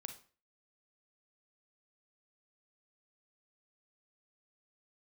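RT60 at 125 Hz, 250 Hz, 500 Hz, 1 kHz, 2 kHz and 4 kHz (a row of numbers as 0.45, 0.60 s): 0.40, 0.40, 0.40, 0.40, 0.40, 0.35 s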